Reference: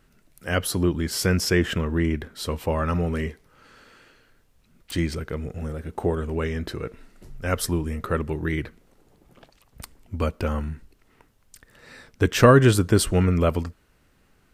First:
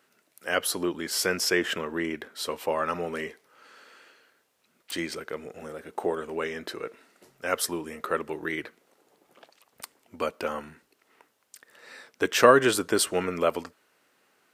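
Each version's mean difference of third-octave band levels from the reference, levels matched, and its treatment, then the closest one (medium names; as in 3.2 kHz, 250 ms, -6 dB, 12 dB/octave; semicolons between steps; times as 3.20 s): 5.5 dB: high-pass 410 Hz 12 dB/octave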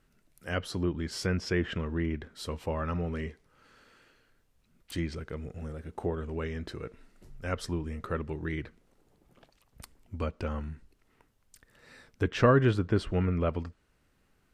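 2.0 dB: low-pass that closes with the level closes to 3 kHz, closed at -17.5 dBFS; trim -8 dB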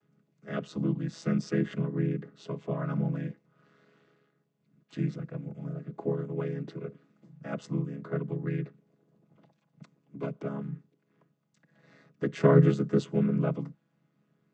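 8.5 dB: vocoder on a held chord minor triad, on C#3; trim -5 dB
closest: second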